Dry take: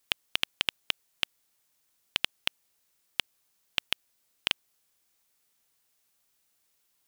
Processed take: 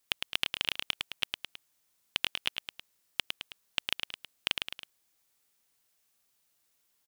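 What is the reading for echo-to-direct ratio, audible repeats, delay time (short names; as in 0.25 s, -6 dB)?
-4.0 dB, 3, 0.107 s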